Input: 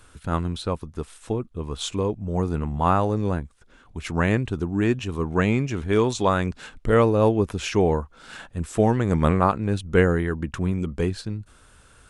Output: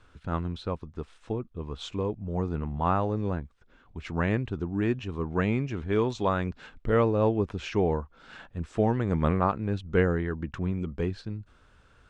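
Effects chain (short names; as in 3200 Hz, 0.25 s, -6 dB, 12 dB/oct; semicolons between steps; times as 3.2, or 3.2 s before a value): air absorption 140 m; gain -5 dB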